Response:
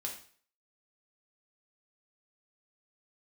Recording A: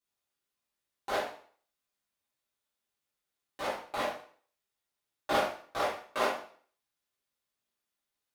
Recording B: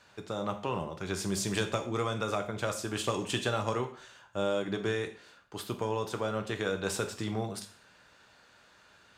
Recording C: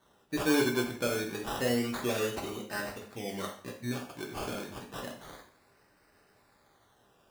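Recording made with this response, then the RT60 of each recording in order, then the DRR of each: C; 0.50 s, 0.50 s, 0.50 s; -9.5 dB, 5.5 dB, -0.5 dB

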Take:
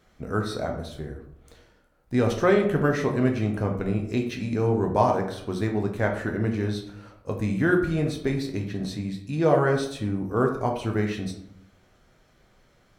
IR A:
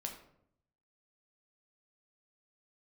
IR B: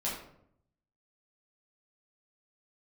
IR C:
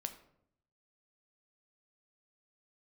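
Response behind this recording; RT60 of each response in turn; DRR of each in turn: A; 0.70 s, 0.70 s, 0.70 s; 2.0 dB, -7.0 dB, 7.0 dB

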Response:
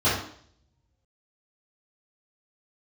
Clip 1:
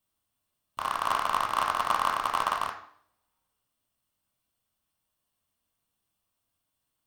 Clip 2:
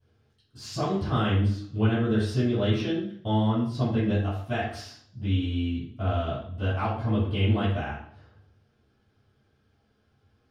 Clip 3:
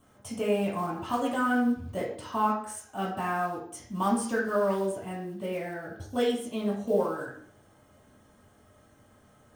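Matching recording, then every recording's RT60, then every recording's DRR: 2; 0.60 s, 0.60 s, 0.60 s; 1.5 dB, -14.5 dB, -5.0 dB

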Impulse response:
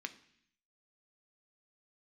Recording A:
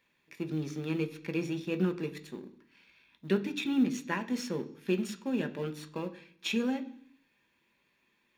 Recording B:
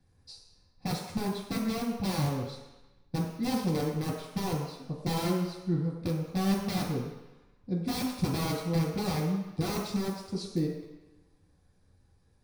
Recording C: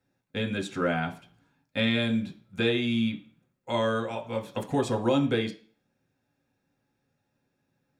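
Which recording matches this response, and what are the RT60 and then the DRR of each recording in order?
A; 0.65 s, 1.0 s, no single decay rate; 8.0 dB, -5.5 dB, 2.5 dB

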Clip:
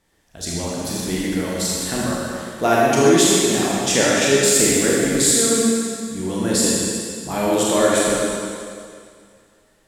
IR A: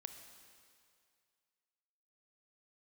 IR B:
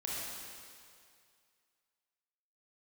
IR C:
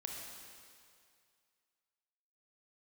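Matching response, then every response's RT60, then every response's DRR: B; 2.2 s, 2.2 s, 2.2 s; 6.5 dB, -6.0 dB, -0.5 dB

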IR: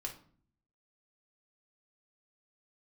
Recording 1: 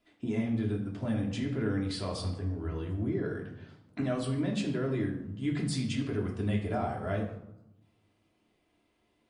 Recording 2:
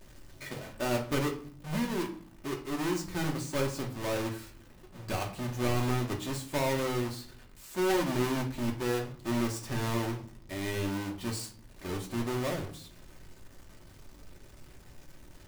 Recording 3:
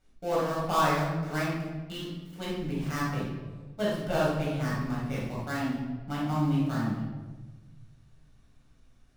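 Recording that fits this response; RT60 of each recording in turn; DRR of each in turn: 2; 0.85 s, 0.50 s, 1.3 s; -1.5 dB, 0.5 dB, -7.5 dB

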